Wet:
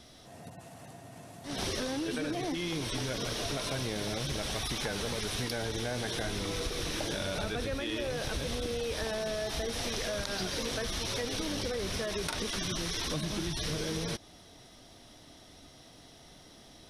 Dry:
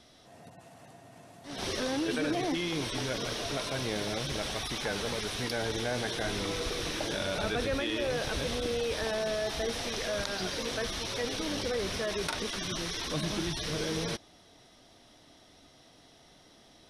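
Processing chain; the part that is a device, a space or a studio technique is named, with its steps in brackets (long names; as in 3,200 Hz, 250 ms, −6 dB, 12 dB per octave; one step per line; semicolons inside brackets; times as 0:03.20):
ASMR close-microphone chain (low-shelf EQ 190 Hz +6 dB; downward compressor, threshold −33 dBFS, peak gain reduction 9 dB; high-shelf EQ 7,100 Hz +6.5 dB)
level +2 dB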